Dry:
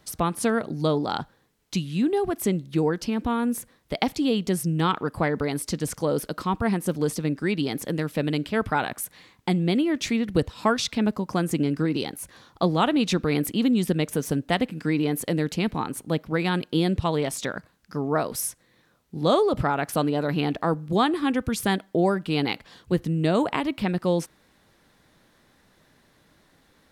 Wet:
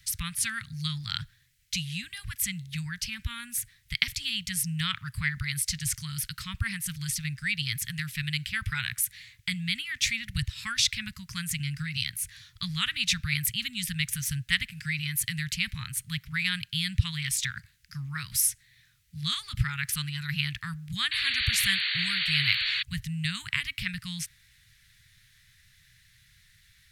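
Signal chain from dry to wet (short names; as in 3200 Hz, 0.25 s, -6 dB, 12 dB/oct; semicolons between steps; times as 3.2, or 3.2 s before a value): painted sound noise, 21.11–22.83, 960–4600 Hz -32 dBFS; elliptic band-stop 120–1900 Hz, stop band 60 dB; gain +5 dB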